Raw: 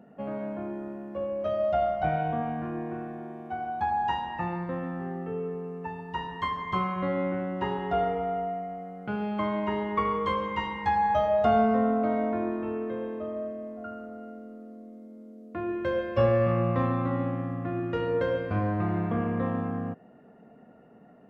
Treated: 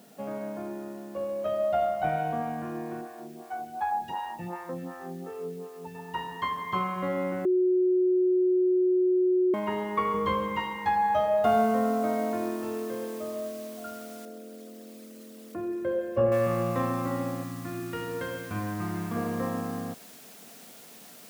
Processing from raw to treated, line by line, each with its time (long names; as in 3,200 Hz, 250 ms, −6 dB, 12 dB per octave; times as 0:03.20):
0:03.01–0:05.95: phaser with staggered stages 2.7 Hz
0:07.45–0:09.54: beep over 366 Hz −19 dBFS
0:10.14–0:10.57: low-shelf EQ 190 Hz +11.5 dB
0:11.44: noise floor change −60 dB −50 dB
0:14.25–0:16.32: spectral envelope exaggerated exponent 1.5
0:17.43–0:19.16: parametric band 560 Hz −10.5 dB 0.93 octaves
whole clip: high-pass filter 190 Hz 6 dB per octave